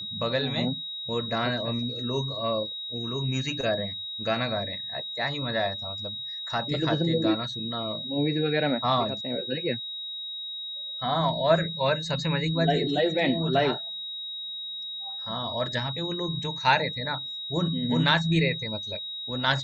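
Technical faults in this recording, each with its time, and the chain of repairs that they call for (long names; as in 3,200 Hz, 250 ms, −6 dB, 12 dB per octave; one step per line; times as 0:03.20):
whistle 3,800 Hz −33 dBFS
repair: notch filter 3,800 Hz, Q 30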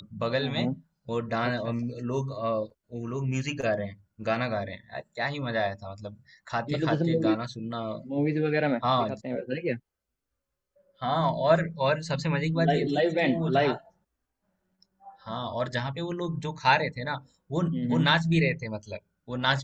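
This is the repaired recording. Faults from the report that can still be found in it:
none of them is left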